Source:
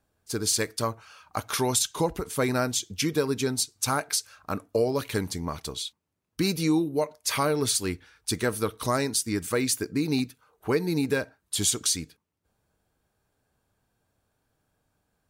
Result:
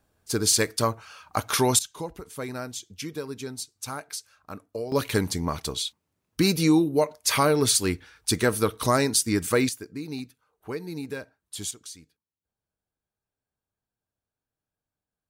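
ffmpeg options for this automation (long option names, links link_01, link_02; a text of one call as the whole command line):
ffmpeg -i in.wav -af "asetnsamples=nb_out_samples=441:pad=0,asendcmd='1.79 volume volume -8.5dB;4.92 volume volume 4dB;9.69 volume volume -8.5dB;11.71 volume volume -16.5dB',volume=4dB" out.wav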